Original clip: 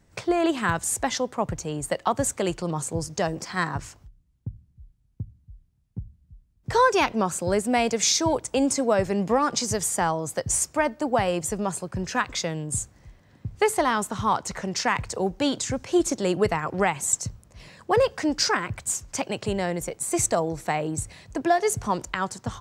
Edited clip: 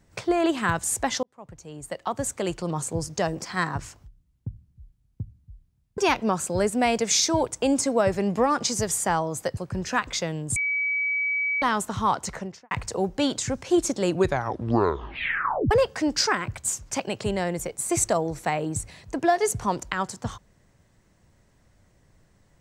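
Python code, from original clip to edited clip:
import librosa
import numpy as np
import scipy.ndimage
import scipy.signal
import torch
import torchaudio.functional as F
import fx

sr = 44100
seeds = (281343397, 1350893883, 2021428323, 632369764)

y = fx.studio_fade_out(x, sr, start_s=14.49, length_s=0.44)
y = fx.edit(y, sr, fx.fade_in_span(start_s=1.23, length_s=1.54),
    fx.cut(start_s=5.98, length_s=0.92),
    fx.cut(start_s=10.49, length_s=1.3),
    fx.bleep(start_s=12.78, length_s=1.06, hz=2280.0, db=-22.5),
    fx.tape_stop(start_s=16.27, length_s=1.66), tone=tone)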